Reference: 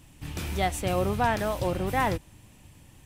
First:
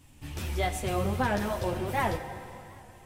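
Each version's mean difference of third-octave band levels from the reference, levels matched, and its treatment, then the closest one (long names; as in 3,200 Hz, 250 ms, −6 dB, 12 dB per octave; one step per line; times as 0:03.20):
4.0 dB: multi-voice chorus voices 4, 1 Hz, delay 11 ms, depth 3 ms
dense smooth reverb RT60 3 s, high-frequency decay 0.9×, DRR 8.5 dB
wow of a warped record 78 rpm, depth 100 cents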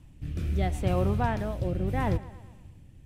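7.0 dB: high-shelf EQ 3,800 Hz −7.5 dB
on a send: bucket-brigade delay 114 ms, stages 4,096, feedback 57%, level −19.5 dB
on the sum: rotating-speaker cabinet horn 0.75 Hz
low-shelf EQ 210 Hz +10.5 dB
level −3 dB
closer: first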